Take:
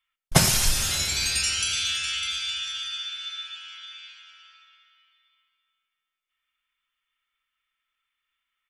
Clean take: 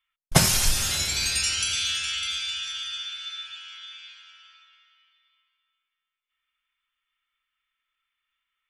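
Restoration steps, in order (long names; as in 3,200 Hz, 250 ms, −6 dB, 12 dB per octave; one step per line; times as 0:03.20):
echo removal 119 ms −15 dB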